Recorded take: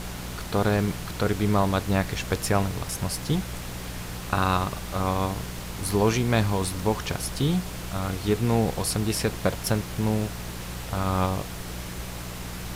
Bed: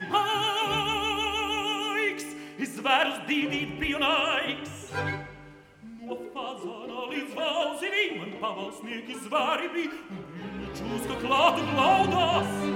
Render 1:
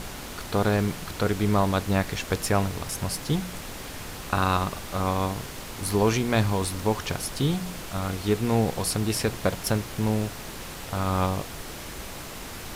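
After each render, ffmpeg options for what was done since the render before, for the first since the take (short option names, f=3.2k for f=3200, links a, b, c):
-af "bandreject=f=60:t=h:w=4,bandreject=f=120:t=h:w=4,bandreject=f=180:t=h:w=4"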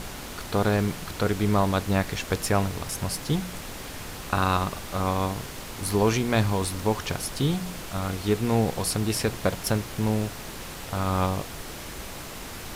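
-af anull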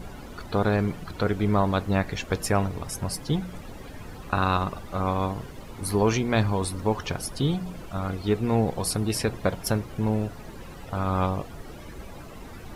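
-af "afftdn=nr=14:nf=-38"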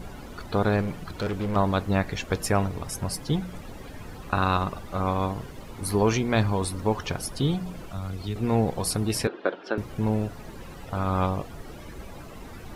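-filter_complex "[0:a]asettb=1/sr,asplit=3[a][b][c];[a]atrim=end=0.814[d];[b]atrim=start=0.81:end=1.56,asetpts=PTS-STARTPTS,afade=t=in:d=0.004:c=qsin,afade=t=out:st=0.746:d=0.004:c=qsin,asoftclip=type=hard:threshold=-24.5dB[e];[c]atrim=start=1.556[f];[d][e]acrossfade=d=0.004:c1=hsin:c2=qsin[g];[g][f]acrossfade=d=0.004:c1=qsin:c2=hsin,asettb=1/sr,asplit=3[h][i][j];[h]atrim=end=7.884[k];[i]atrim=start=7.88:end=8.36,asetpts=PTS-STARTPTS,afade=t=in:d=0.004:c=qsin,afade=t=out:st=0.476:d=0.004:c=qsin,acrossover=split=150|3000[l][m][n];[m]acompressor=threshold=-37dB:ratio=4:attack=3.2:release=140:knee=2.83:detection=peak[o];[l][o][n]amix=inputs=3:normalize=0[p];[j]atrim=start=8.356[q];[k][p]acrossfade=d=0.004:c1=hsin:c2=qsin[r];[r][q]acrossfade=d=0.004:c1=qsin:c2=hsin,asettb=1/sr,asplit=3[s][t][u];[s]atrim=end=9.274[v];[t]atrim=start=9.27:end=9.78,asetpts=PTS-STARTPTS,afade=t=in:d=0.004:c=qsin,afade=t=out:st=0.506:d=0.004:c=qsin,highpass=f=290:w=0.5412,highpass=f=290:w=1.3066,equalizer=f=350:t=q:w=4:g=5,equalizer=f=690:t=q:w=4:g=-3,equalizer=f=1k:t=q:w=4:g=-4,equalizer=f=1.5k:t=q:w=4:g=5,equalizer=f=2.1k:t=q:w=4:g=-7,lowpass=f=3.6k:w=0.5412,lowpass=f=3.6k:w=1.3066[w];[u]atrim=start=9.776[x];[v][w]acrossfade=d=0.004:c1=hsin:c2=qsin[y];[y][x]acrossfade=d=0.004:c1=qsin:c2=hsin"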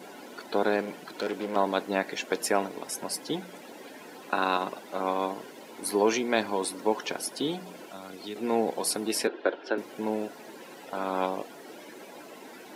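-af "highpass=f=260:w=0.5412,highpass=f=260:w=1.3066,bandreject=f=1.2k:w=6.2"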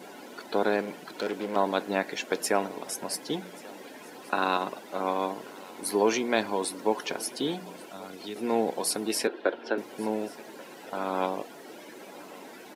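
-af "aecho=1:1:1136:0.0794"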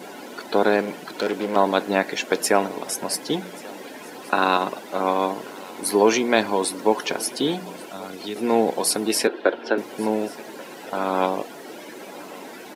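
-af "volume=7dB"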